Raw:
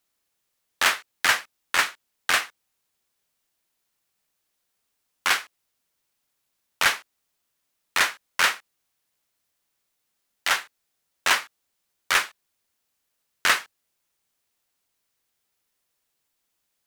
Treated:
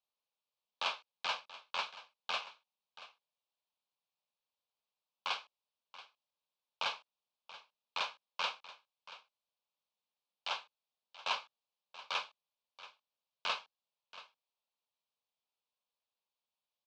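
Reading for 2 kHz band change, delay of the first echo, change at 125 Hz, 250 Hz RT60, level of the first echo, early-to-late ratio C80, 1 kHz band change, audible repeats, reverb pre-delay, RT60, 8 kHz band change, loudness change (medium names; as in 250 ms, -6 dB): -19.5 dB, 681 ms, no reading, no reverb, -16.5 dB, no reverb, -12.0 dB, 1, no reverb, no reverb, -26.0 dB, -16.0 dB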